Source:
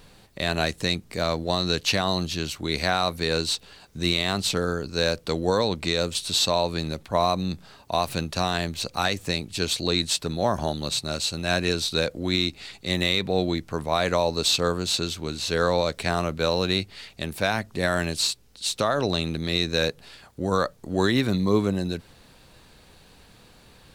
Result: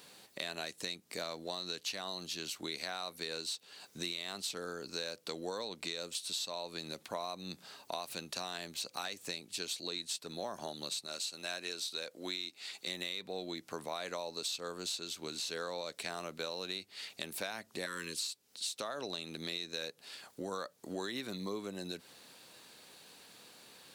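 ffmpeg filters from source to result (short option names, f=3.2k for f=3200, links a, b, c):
-filter_complex "[0:a]asettb=1/sr,asplit=3[a][b][c];[a]atrim=end=11.064[d];[b]atrim=start=11.06:end=12.87,asetpts=PTS-STARTPTS,afade=t=in:d=0.004:c=qsin,afade=t=out:st=1.806:d=0.004:c=qsin,lowshelf=f=220:g=-11[e];[c]atrim=start=12.866[f];[d][e]acrossfade=d=0.004:c1=hsin:c2=qsin[g];[g][f]acrossfade=d=0.004:c1=qsin:c2=hsin,asettb=1/sr,asplit=3[h][i][j];[h]atrim=end=17.864[k];[i]atrim=start=17.86:end=18.29,asetpts=PTS-STARTPTS,afade=t=in:d=0.004:c=qsin,afade=t=out:st=0.426:d=0.004:c=qsin,asuperstop=centerf=710:order=12:qfactor=1.8[l];[j]atrim=start=18.286[m];[k][l]acrossfade=d=0.004:c1=hsin:c2=qsin[n];[n][m]acrossfade=d=0.004:c1=qsin:c2=hsin,highpass=250,highshelf=f=3.1k:g=8,acompressor=threshold=-32dB:ratio=5,volume=-5.5dB"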